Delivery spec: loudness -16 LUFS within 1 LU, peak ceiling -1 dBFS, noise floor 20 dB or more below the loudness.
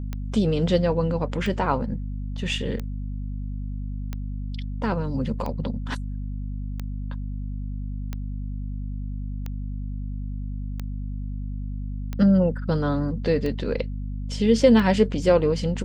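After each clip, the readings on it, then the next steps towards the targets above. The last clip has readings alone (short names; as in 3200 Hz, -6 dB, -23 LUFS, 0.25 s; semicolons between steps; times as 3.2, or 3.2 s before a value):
clicks 12; hum 50 Hz; harmonics up to 250 Hz; hum level -28 dBFS; loudness -26.0 LUFS; peak -5.5 dBFS; loudness target -16.0 LUFS
-> de-click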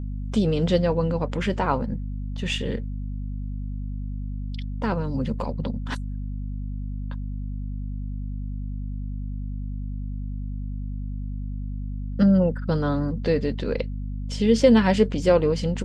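clicks 0; hum 50 Hz; harmonics up to 250 Hz; hum level -28 dBFS
-> notches 50/100/150/200/250 Hz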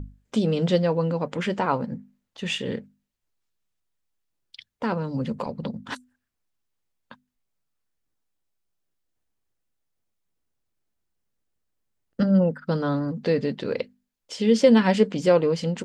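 hum none; loudness -24.0 LUFS; peak -5.5 dBFS; loudness target -16.0 LUFS
-> gain +8 dB; limiter -1 dBFS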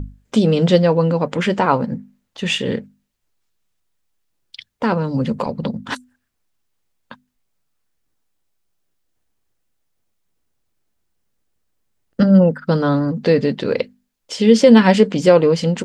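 loudness -16.0 LUFS; peak -1.0 dBFS; noise floor -72 dBFS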